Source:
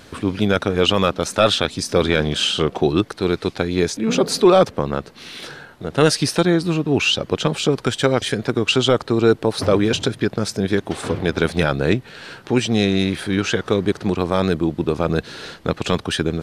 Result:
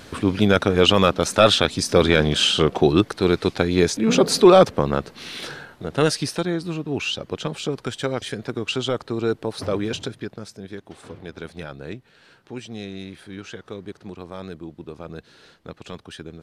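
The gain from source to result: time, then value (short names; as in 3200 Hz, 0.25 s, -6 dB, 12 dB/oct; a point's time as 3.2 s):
5.51 s +1 dB
6.45 s -8 dB
9.98 s -8 dB
10.58 s -16.5 dB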